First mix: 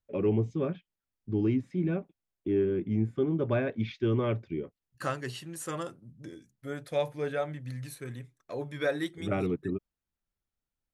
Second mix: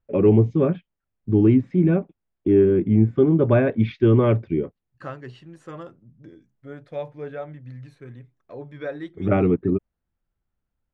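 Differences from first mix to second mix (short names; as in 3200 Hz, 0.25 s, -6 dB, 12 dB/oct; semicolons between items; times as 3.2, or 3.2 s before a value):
first voice +12.0 dB; master: add tape spacing loss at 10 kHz 27 dB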